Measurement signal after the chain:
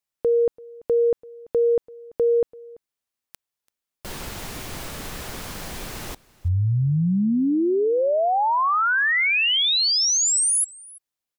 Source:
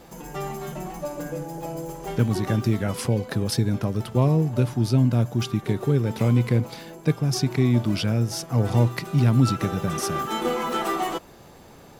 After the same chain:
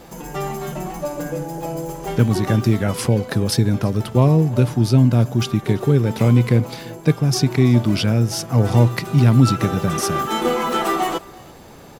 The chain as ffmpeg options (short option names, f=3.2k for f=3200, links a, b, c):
-af "aecho=1:1:337:0.0708,volume=5.5dB"